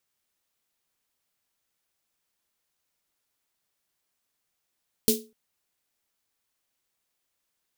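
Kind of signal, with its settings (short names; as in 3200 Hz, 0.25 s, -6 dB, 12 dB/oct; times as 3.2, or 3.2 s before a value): snare drum length 0.25 s, tones 230 Hz, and 430 Hz, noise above 3200 Hz, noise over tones 1.5 dB, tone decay 0.31 s, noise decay 0.23 s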